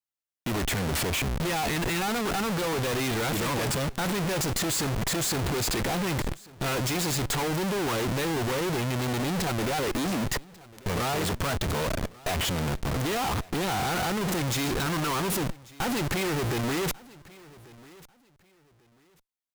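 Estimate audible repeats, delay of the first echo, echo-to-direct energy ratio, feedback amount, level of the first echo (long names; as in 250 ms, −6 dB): 2, 1,142 ms, −22.0 dB, 24%, −22.0 dB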